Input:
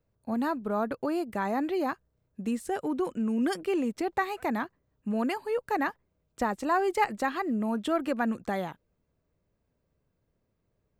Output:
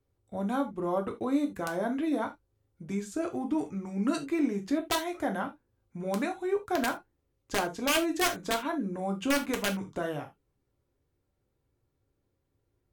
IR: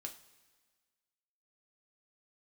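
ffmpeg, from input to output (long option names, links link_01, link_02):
-filter_complex "[0:a]aeval=exprs='(mod(8.41*val(0)+1,2)-1)/8.41':channel_layout=same,asetrate=37529,aresample=44100[link_01];[1:a]atrim=start_sample=2205,atrim=end_sample=3969[link_02];[link_01][link_02]afir=irnorm=-1:irlink=0,volume=3dB"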